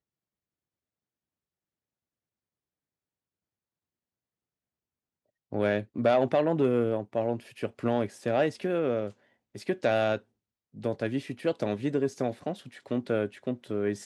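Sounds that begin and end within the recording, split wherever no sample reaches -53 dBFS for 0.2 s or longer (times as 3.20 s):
5.52–9.13 s
9.55–10.22 s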